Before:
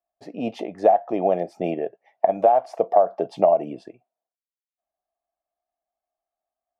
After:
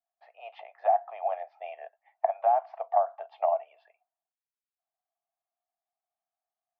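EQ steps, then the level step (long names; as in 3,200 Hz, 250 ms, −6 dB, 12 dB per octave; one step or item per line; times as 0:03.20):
Butterworth high-pass 700 Hz 48 dB per octave
low-pass filter 3,100 Hz 12 dB per octave
high-frequency loss of the air 310 metres
−2.0 dB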